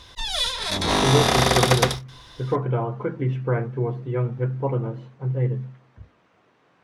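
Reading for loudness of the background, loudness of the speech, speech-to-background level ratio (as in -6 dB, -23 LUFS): -21.0 LUFS, -26.0 LUFS, -5.0 dB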